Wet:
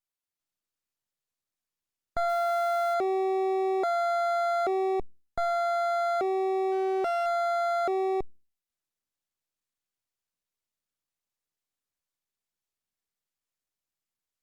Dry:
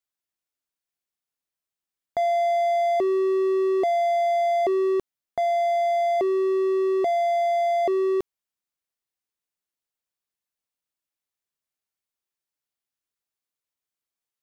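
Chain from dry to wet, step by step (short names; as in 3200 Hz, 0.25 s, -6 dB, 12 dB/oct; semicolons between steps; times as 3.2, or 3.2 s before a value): 2.29–2.94 switching spikes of -34 dBFS; 6.71–7.26 dynamic EQ 950 Hz, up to -8 dB, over -50 dBFS, Q 6.1; half-wave rectifier; Opus 48 kbps 48000 Hz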